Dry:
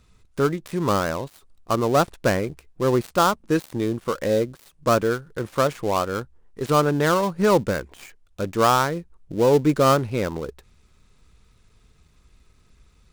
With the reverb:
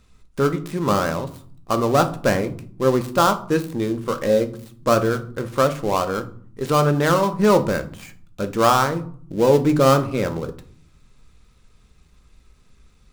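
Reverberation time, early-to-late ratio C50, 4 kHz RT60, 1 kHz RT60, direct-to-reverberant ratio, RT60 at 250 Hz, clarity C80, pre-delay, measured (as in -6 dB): 0.55 s, 15.0 dB, 0.30 s, 0.50 s, 7.0 dB, 0.85 s, 19.5 dB, 4 ms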